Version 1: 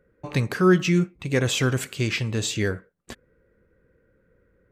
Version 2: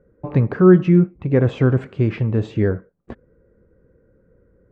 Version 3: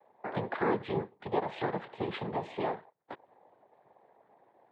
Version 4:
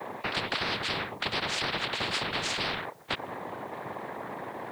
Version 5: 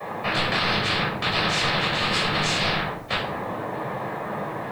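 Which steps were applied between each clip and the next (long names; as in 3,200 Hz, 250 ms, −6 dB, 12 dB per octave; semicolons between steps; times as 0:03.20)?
Bessel low-pass filter 770 Hz, order 2; level +7.5 dB
cochlear-implant simulation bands 6; three-way crossover with the lows and the highs turned down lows −19 dB, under 440 Hz, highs −17 dB, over 3,500 Hz; downward compressor 2 to 1, threshold −34 dBFS, peak gain reduction 11 dB
every bin compressed towards the loudest bin 10 to 1
rectangular room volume 740 cubic metres, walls furnished, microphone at 6 metres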